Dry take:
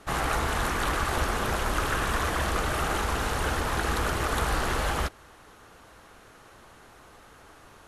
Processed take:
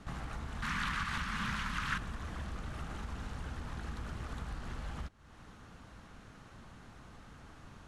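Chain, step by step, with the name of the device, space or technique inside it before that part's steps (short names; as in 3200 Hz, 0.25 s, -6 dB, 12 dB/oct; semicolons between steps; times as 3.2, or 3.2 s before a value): jukebox (LPF 7600 Hz 12 dB/oct; resonant low shelf 290 Hz +8.5 dB, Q 1.5; compressor 4:1, threshold -36 dBFS, peak gain reduction 17.5 dB); 0.62–1.98 EQ curve 110 Hz 0 dB, 190 Hz +8 dB, 350 Hz -5 dB, 730 Hz -4 dB, 1000 Hz +10 dB, 1900 Hz +15 dB, 4400 Hz +12 dB, 7500 Hz +8 dB; gain -5 dB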